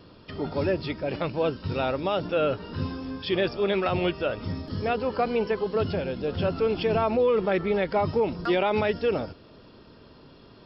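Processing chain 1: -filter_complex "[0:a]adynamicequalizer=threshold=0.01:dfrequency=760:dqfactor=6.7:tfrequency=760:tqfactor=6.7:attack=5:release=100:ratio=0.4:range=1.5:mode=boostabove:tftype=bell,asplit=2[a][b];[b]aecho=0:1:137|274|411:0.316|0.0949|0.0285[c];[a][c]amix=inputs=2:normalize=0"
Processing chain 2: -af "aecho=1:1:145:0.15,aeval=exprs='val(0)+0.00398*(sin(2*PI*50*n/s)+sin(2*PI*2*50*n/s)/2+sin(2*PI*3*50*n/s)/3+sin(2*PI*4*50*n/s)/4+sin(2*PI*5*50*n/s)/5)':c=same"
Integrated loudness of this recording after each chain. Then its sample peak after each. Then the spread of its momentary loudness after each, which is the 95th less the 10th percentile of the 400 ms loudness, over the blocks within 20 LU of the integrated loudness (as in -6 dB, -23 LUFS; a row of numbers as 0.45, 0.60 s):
-26.0, -26.5 LUFS; -12.5, -14.0 dBFS; 9, 9 LU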